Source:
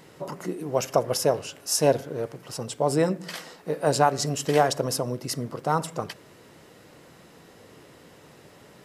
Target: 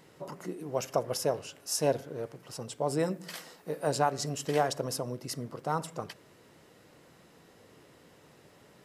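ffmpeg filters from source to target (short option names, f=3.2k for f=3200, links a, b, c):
-filter_complex "[0:a]asettb=1/sr,asplit=3[a][b][c];[a]atrim=end=2.994[d];[b]atrim=start=2.99:end=3.87,asetpts=PTS-STARTPTS,afade=t=in:d=0.004:c=qsin,afade=t=out:st=0.876:d=0.004:c=qsin,highshelf=f=10k:g=10[e];[c]atrim=start=3.866[f];[d][e]acrossfade=d=0.004:c1=hsin:c2=qsin[g];[g][f]acrossfade=d=0.004:c1=qsin:c2=hsin,volume=-7dB"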